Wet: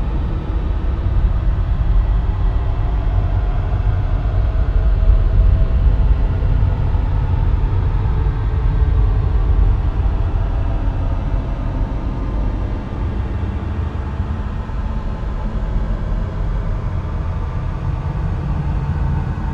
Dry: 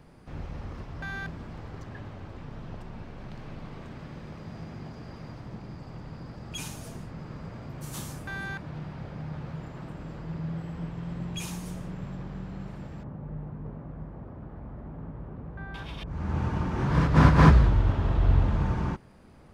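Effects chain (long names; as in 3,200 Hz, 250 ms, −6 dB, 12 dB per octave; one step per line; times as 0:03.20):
phase shifter 1.6 Hz, delay 3.2 ms, feedback 22%
extreme stretch with random phases 41×, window 0.10 s, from 0:18.16
level +3.5 dB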